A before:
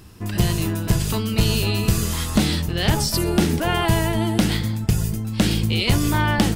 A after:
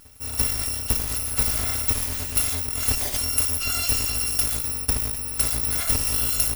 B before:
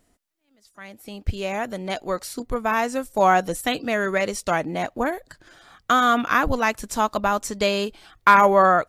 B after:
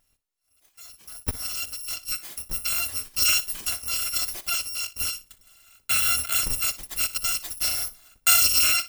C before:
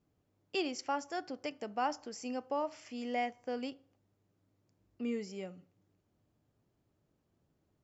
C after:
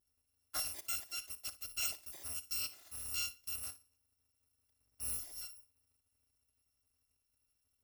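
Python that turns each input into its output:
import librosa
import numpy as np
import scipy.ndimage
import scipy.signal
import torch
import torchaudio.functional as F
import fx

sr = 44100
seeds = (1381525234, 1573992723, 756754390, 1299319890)

y = fx.bit_reversed(x, sr, seeds[0], block=256)
y = fx.room_flutter(y, sr, wall_m=10.2, rt60_s=0.22)
y = y * 10.0 ** (-4.5 / 20.0)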